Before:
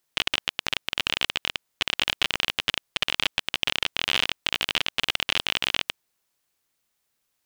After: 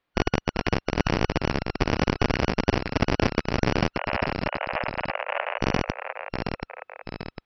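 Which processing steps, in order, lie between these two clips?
band-splitting scrambler in four parts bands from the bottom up 3142
0:03.96–0:05.59: Chebyshev band-pass filter 570–2,800 Hz, order 4
delay with pitch and tempo change per echo 380 ms, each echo −1 semitone, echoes 2, each echo −6 dB
high-frequency loss of the air 380 metres
level +6.5 dB

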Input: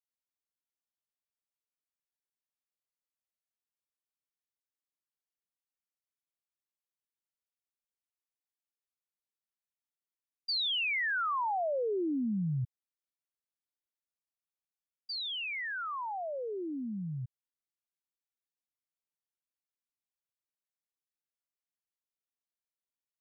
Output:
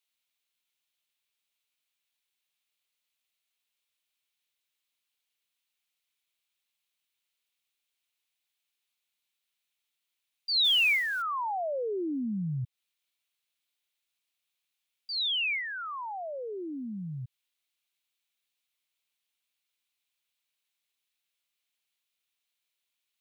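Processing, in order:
flat-topped bell 3,000 Hz +8 dB 1.1 octaves
0:10.64–0:11.22: noise that follows the level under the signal 23 dB
one half of a high-frequency compander encoder only

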